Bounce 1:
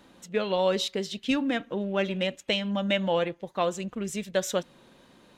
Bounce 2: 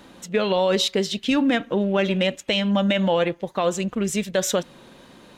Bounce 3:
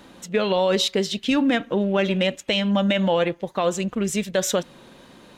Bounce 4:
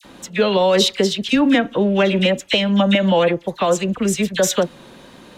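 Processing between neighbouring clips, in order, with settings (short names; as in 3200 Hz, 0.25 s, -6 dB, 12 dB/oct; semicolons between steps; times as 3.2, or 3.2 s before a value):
limiter -20 dBFS, peak gain reduction 7.5 dB; gain +8.5 dB
nothing audible
dispersion lows, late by 47 ms, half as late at 1700 Hz; gain +5 dB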